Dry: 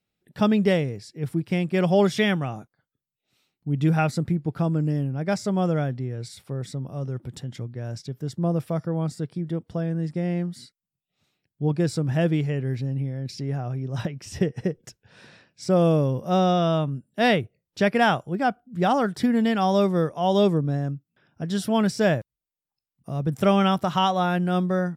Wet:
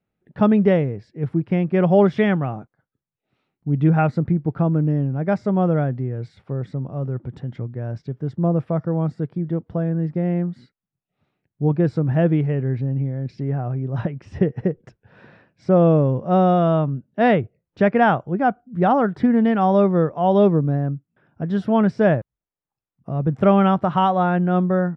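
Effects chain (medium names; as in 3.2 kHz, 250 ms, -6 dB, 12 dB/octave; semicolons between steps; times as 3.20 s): low-pass 1.6 kHz 12 dB/octave; trim +4.5 dB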